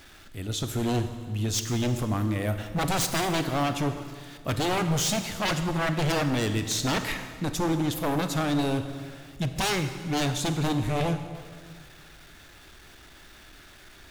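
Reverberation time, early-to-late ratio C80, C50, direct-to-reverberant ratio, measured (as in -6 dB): 1.8 s, 10.0 dB, 9.0 dB, 8.0 dB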